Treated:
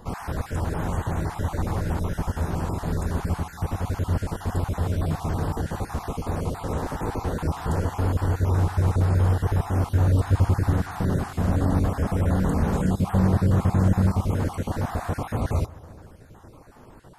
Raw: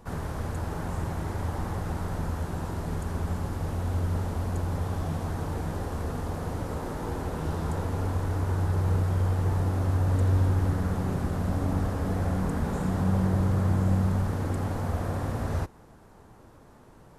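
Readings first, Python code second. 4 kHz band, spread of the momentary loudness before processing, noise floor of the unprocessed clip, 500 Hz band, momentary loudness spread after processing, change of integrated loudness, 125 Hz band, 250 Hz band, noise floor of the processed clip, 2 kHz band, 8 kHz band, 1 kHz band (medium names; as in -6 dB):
+4.0 dB, 8 LU, -53 dBFS, +4.0 dB, 8 LU, +4.0 dB, +3.5 dB, +4.0 dB, -47 dBFS, +4.0 dB, +4.0 dB, +4.5 dB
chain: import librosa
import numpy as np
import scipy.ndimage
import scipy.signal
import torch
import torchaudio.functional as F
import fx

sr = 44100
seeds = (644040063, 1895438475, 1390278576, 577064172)

y = fx.spec_dropout(x, sr, seeds[0], share_pct=29)
y = fx.echo_wet_lowpass(y, sr, ms=142, feedback_pct=71, hz=1600.0, wet_db=-20.5)
y = y * librosa.db_to_amplitude(5.5)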